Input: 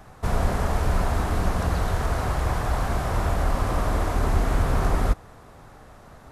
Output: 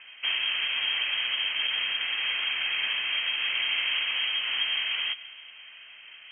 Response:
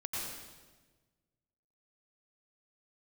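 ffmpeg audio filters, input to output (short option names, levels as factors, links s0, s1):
-filter_complex "[0:a]highpass=f=87:w=0.5412,highpass=f=87:w=1.3066,alimiter=limit=0.106:level=0:latency=1:release=224,asplit=2[s0][s1];[1:a]atrim=start_sample=2205[s2];[s1][s2]afir=irnorm=-1:irlink=0,volume=0.133[s3];[s0][s3]amix=inputs=2:normalize=0,lowpass=f=2800:t=q:w=0.5098,lowpass=f=2800:t=q:w=0.6013,lowpass=f=2800:t=q:w=0.9,lowpass=f=2800:t=q:w=2.563,afreqshift=-3300"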